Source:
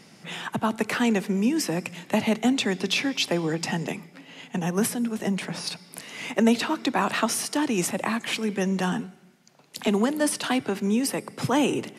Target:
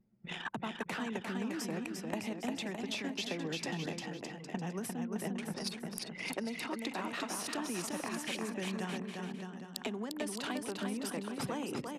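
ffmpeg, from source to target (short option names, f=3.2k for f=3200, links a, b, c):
-af "anlmdn=15.8,acompressor=threshold=-36dB:ratio=16,aecho=1:1:350|612.5|809.4|957|1068:0.631|0.398|0.251|0.158|0.1"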